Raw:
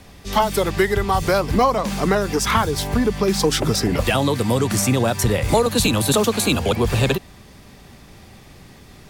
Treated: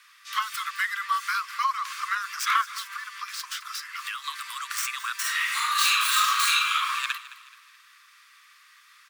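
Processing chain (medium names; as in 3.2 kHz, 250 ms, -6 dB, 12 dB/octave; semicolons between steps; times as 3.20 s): tracing distortion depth 0.056 ms; steep high-pass 1.1 kHz 96 dB/octave; peaking EQ 15 kHz -10.5 dB 3 oct; 2.61–4.24 s: compression 4:1, threshold -35 dBFS, peak gain reduction 8.5 dB; 5.20–6.85 s: reverb throw, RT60 1 s, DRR -6.5 dB; feedback delay 214 ms, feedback 43%, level -17 dB; trim +3 dB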